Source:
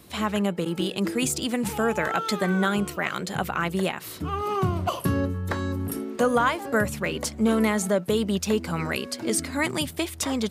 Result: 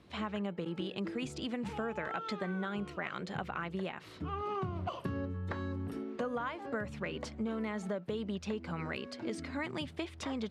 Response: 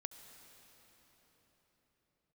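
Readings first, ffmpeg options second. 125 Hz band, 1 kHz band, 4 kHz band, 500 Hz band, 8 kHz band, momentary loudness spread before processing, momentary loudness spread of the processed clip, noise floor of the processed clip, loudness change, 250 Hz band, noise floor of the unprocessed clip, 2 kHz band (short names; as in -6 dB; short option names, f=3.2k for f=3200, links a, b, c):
-11.5 dB, -12.5 dB, -13.5 dB, -12.5 dB, -24.5 dB, 6 LU, 3 LU, -51 dBFS, -12.5 dB, -12.0 dB, -40 dBFS, -13.0 dB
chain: -af "lowpass=3.5k,acompressor=threshold=-25dB:ratio=6,volume=-8dB"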